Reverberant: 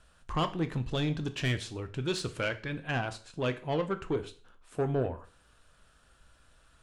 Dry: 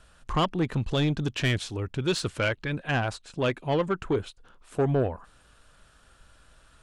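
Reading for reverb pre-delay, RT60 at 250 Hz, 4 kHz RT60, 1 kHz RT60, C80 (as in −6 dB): 5 ms, 0.40 s, 0.40 s, 0.45 s, 20.0 dB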